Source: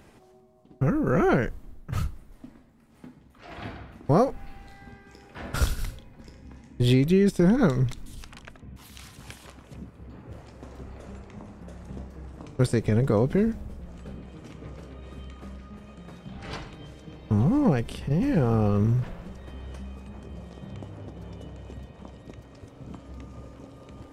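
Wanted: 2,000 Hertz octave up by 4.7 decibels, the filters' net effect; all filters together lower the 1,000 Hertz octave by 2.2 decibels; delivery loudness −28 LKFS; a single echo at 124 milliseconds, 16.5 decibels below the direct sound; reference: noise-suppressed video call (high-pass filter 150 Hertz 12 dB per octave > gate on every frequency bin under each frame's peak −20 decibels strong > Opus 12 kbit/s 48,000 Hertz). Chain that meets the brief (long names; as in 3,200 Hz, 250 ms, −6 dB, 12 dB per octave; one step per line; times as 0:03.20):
high-pass filter 150 Hz 12 dB per octave
parametric band 1,000 Hz −6 dB
parametric band 2,000 Hz +8.5 dB
single-tap delay 124 ms −16.5 dB
gate on every frequency bin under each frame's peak −20 dB strong
level −1 dB
Opus 12 kbit/s 48,000 Hz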